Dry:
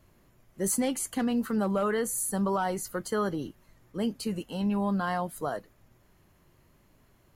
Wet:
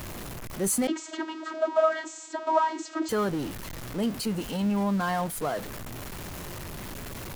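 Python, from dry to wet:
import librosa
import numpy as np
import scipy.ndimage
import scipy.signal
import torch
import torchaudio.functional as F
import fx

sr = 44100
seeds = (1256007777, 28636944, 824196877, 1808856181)

y = x + 0.5 * 10.0 ** (-32.5 / 20.0) * np.sign(x)
y = fx.vocoder(y, sr, bands=32, carrier='saw', carrier_hz=318.0, at=(0.87, 3.09))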